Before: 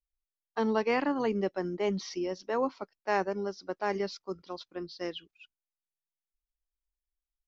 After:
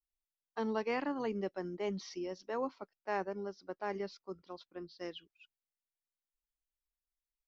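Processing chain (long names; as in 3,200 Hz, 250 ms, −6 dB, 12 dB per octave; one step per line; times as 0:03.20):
0:02.75–0:05.00: high-shelf EQ 5,200 Hz −9 dB
level −7 dB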